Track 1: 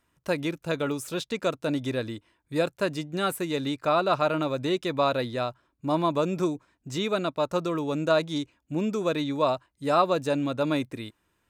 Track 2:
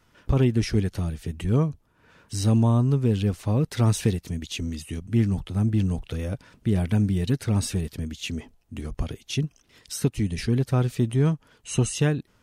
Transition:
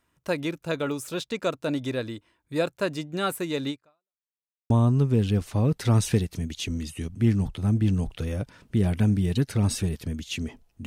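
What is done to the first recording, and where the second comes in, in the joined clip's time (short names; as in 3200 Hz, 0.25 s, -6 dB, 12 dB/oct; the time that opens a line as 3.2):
track 1
3.7–4.2 fade out exponential
4.2–4.7 mute
4.7 switch to track 2 from 2.62 s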